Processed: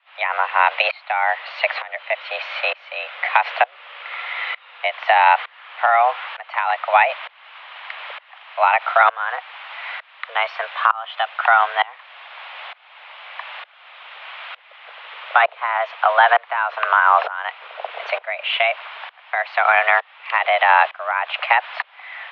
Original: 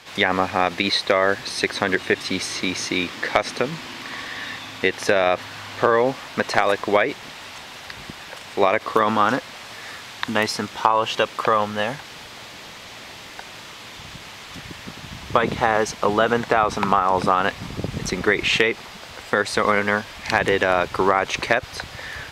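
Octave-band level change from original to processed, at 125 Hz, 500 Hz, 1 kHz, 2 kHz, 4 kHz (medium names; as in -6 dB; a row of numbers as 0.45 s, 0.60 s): under -40 dB, -4.0 dB, +5.0 dB, +4.0 dB, -2.0 dB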